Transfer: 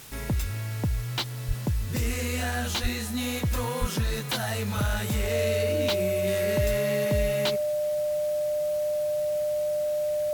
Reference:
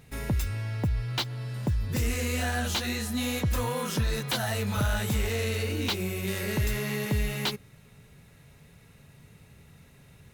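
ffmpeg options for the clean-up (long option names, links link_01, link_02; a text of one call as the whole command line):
ffmpeg -i in.wav -filter_complex "[0:a]bandreject=frequency=600:width=30,asplit=3[link_01][link_02][link_03];[link_01]afade=type=out:start_time=1.47:duration=0.02[link_04];[link_02]highpass=frequency=140:width=0.5412,highpass=frequency=140:width=1.3066,afade=type=in:start_time=1.47:duration=0.02,afade=type=out:start_time=1.59:duration=0.02[link_05];[link_03]afade=type=in:start_time=1.59:duration=0.02[link_06];[link_04][link_05][link_06]amix=inputs=3:normalize=0,asplit=3[link_07][link_08][link_09];[link_07]afade=type=out:start_time=2.82:duration=0.02[link_10];[link_08]highpass=frequency=140:width=0.5412,highpass=frequency=140:width=1.3066,afade=type=in:start_time=2.82:duration=0.02,afade=type=out:start_time=2.94:duration=0.02[link_11];[link_09]afade=type=in:start_time=2.94:duration=0.02[link_12];[link_10][link_11][link_12]amix=inputs=3:normalize=0,asplit=3[link_13][link_14][link_15];[link_13]afade=type=out:start_time=3.8:duration=0.02[link_16];[link_14]highpass=frequency=140:width=0.5412,highpass=frequency=140:width=1.3066,afade=type=in:start_time=3.8:duration=0.02,afade=type=out:start_time=3.92:duration=0.02[link_17];[link_15]afade=type=in:start_time=3.92:duration=0.02[link_18];[link_16][link_17][link_18]amix=inputs=3:normalize=0,afwtdn=0.005" out.wav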